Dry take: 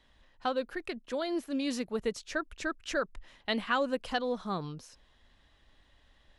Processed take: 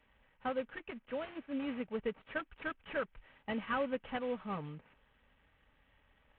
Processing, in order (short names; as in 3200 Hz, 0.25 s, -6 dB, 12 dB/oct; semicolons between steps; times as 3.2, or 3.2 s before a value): CVSD 16 kbps; notch comb 350 Hz; gain -4 dB